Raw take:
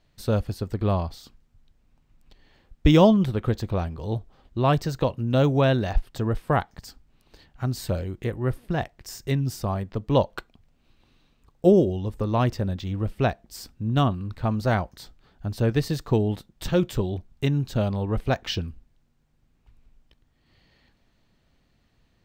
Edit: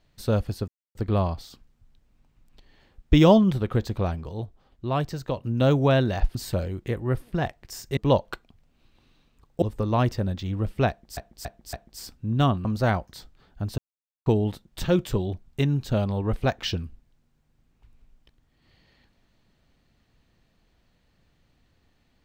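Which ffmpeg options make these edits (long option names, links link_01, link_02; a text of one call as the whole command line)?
ffmpeg -i in.wav -filter_complex "[0:a]asplit=13[link_01][link_02][link_03][link_04][link_05][link_06][link_07][link_08][link_09][link_10][link_11][link_12][link_13];[link_01]atrim=end=0.68,asetpts=PTS-STARTPTS,afade=type=out:start_time=0.676:duration=0.004:curve=hsin,apad=pad_dur=0.27[link_14];[link_02]atrim=start=0.68:end=4.022,asetpts=PTS-STARTPTS,afade=type=in:duration=0.004:curve=hsin[link_15];[link_03]atrim=start=4.018:end=5.162,asetpts=PTS-STARTPTS,volume=-5dB[link_16];[link_04]atrim=start=5.158:end=6.082[link_17];[link_05]atrim=start=7.708:end=9.332[link_18];[link_06]atrim=start=10.018:end=11.672[link_19];[link_07]atrim=start=12.028:end=13.582[link_20];[link_08]atrim=start=13.298:end=13.582[link_21];[link_09]atrim=start=13.298:end=13.582[link_22];[link_10]atrim=start=13.298:end=14.222[link_23];[link_11]atrim=start=14.488:end=15.62,asetpts=PTS-STARTPTS,afade=type=out:start_time=1.128:duration=0.004:curve=hsin[link_24];[link_12]atrim=start=15.62:end=16.1,asetpts=PTS-STARTPTS,volume=0[link_25];[link_13]atrim=start=16.1,asetpts=PTS-STARTPTS,afade=type=in:duration=0.004:curve=hsin[link_26];[link_14][link_15]concat=n=2:v=0:a=1[link_27];[link_27][link_16]acrossfade=duration=0.004:curve1=hsin:curve2=hsin[link_28];[link_28][link_17]acrossfade=duration=0.004:curve1=hsin:curve2=hsin[link_29];[link_29][link_18]acrossfade=duration=0.004:curve1=hsin:curve2=hsin[link_30];[link_30][link_19]acrossfade=duration=0.004:curve1=hsin:curve2=hsin[link_31];[link_31][link_20]acrossfade=duration=0.004:curve1=hsin:curve2=hsin[link_32];[link_32][link_21]acrossfade=duration=0.004:curve1=hsin:curve2=hsin[link_33];[link_33][link_22]acrossfade=duration=0.004:curve1=hsin:curve2=hsin[link_34];[link_34][link_23]acrossfade=duration=0.004:curve1=hsin:curve2=hsin[link_35];[link_24][link_25][link_26]concat=n=3:v=0:a=1[link_36];[link_35][link_36]acrossfade=duration=0.004:curve1=hsin:curve2=hsin" out.wav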